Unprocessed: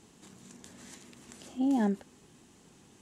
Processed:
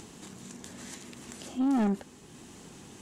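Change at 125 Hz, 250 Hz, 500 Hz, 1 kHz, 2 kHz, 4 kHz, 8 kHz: n/a, +1.5 dB, +0.5 dB, +2.0 dB, +2.0 dB, +5.5 dB, +6.0 dB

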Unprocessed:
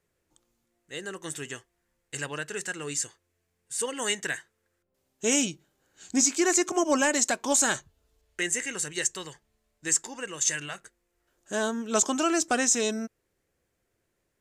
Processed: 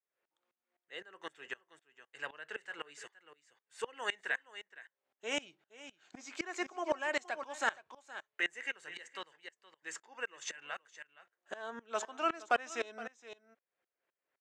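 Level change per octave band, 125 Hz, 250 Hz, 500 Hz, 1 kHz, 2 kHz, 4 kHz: under -20 dB, -19.0 dB, -10.5 dB, -6.0 dB, -6.0 dB, -11.0 dB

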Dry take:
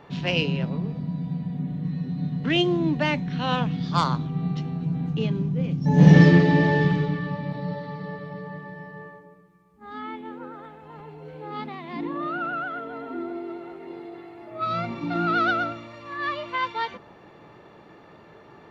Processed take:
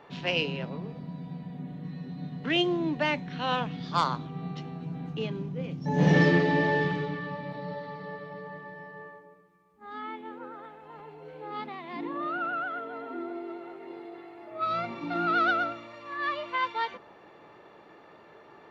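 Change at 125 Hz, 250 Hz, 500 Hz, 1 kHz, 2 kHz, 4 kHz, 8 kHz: -10.5 dB, -8.0 dB, -3.0 dB, -2.0 dB, -2.0 dB, -3.0 dB, n/a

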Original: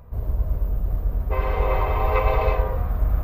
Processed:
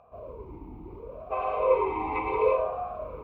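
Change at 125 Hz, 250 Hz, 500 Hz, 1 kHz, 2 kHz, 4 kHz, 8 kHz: -22.5 dB, -2.5 dB, +0.5 dB, -2.5 dB, -6.5 dB, under -10 dB, n/a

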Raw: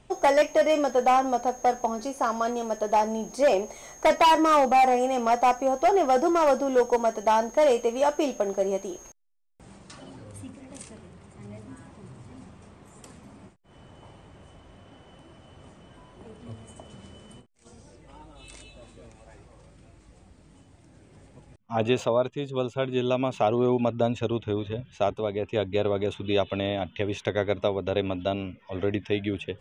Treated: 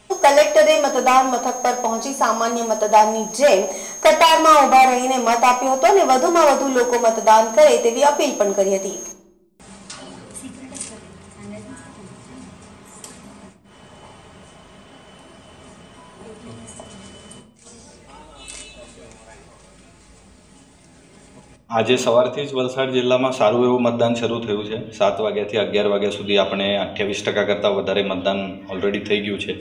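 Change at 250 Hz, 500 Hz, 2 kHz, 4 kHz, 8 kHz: +5.5, +7.5, +10.0, +11.5, +15.0 dB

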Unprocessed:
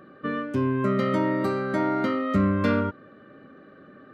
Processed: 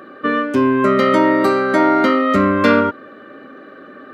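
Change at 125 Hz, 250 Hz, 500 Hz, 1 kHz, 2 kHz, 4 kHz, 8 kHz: +0.5 dB, +8.5 dB, +11.5 dB, +13.0 dB, +13.0 dB, +13.0 dB, n/a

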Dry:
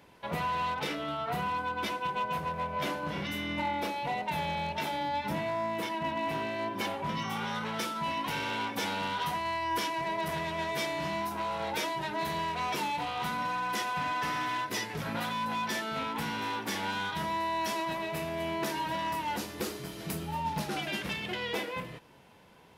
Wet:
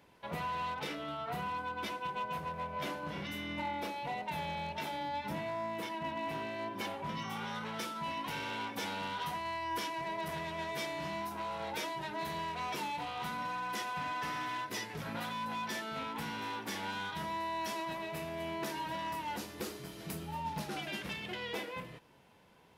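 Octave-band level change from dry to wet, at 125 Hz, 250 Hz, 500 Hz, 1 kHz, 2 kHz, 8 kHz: -5.5, -5.5, -5.5, -5.5, -5.5, -5.5 dB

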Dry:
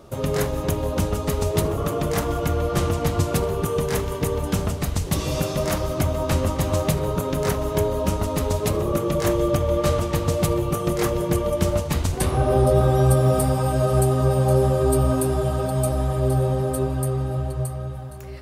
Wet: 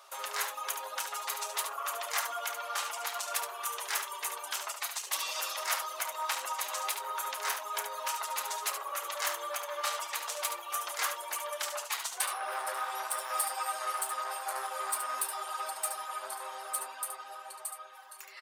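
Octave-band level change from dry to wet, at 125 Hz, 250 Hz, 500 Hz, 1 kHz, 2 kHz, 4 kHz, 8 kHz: under -40 dB, under -40 dB, -22.0 dB, -5.5 dB, -2.0 dB, -2.5 dB, -2.0 dB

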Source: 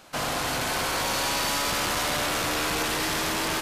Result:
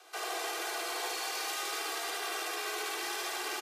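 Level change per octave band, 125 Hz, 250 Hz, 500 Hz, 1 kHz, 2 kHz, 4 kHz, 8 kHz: under -40 dB, -16.0 dB, -9.5 dB, -9.0 dB, -8.5 dB, -9.0 dB, -9.0 dB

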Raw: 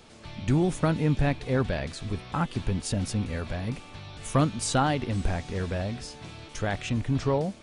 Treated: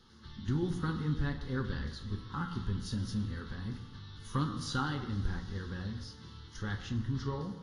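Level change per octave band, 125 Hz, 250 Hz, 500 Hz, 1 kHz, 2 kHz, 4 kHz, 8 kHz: -7.0, -8.0, -14.0, -10.5, -8.0, -7.0, -15.0 dB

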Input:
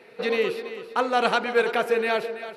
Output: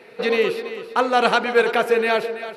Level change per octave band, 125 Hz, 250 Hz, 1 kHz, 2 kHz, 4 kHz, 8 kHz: +4.5, +4.5, +4.5, +4.5, +4.5, +4.5 dB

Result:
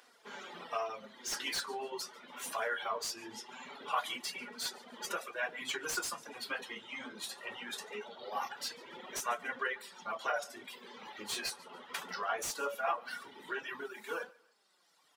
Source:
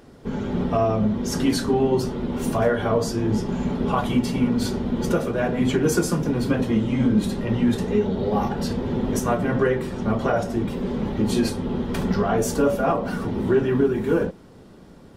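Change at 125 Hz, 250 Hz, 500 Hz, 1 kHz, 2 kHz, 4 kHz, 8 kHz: under -40 dB, -32.0 dB, -20.0 dB, -10.0 dB, -5.5 dB, -4.5 dB, -6.5 dB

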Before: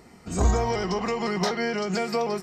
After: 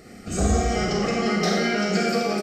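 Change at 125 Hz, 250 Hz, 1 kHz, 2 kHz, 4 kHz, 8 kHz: +2.0, +5.5, +1.5, +5.0, +5.0, +5.5 dB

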